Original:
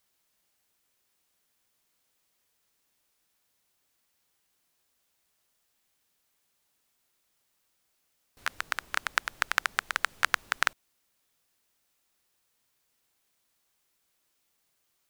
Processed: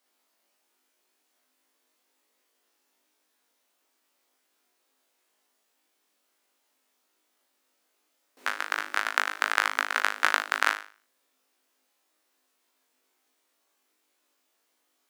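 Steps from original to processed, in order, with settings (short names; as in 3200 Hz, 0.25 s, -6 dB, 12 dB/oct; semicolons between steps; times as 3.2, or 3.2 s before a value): Chebyshev high-pass 260 Hz, order 4; tilt -1.5 dB/oct; flutter echo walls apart 3.3 m, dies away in 0.39 s; gain +2.5 dB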